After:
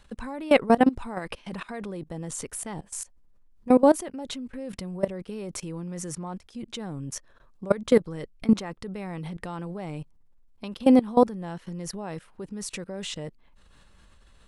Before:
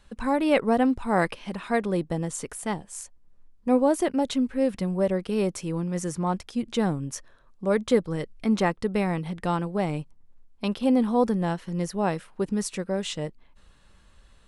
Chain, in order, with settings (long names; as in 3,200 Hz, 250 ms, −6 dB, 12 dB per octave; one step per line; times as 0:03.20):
output level in coarse steps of 20 dB
level +5.5 dB